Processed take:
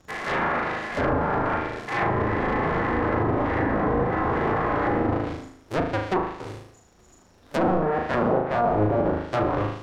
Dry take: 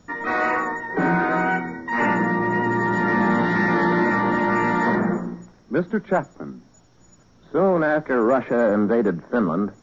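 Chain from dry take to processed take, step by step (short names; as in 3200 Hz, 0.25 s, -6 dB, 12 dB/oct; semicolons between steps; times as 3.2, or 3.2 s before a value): cycle switcher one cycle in 2, inverted; flutter echo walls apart 6.5 m, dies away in 0.61 s; treble ducked by the level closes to 860 Hz, closed at -12.5 dBFS; gain -4.5 dB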